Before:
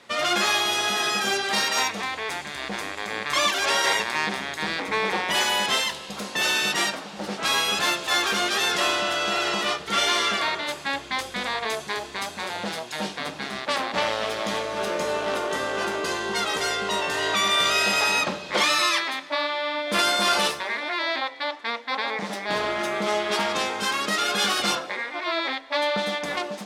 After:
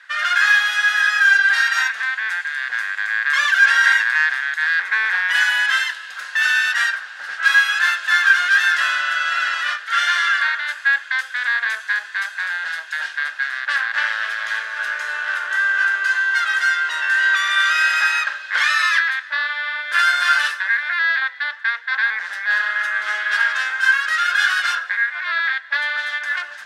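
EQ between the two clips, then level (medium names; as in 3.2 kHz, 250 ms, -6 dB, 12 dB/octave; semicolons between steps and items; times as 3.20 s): resonant high-pass 1.6 kHz, resonance Q 11; treble shelf 5.7 kHz -5.5 dB; band-stop 2.3 kHz, Q 17; -1.5 dB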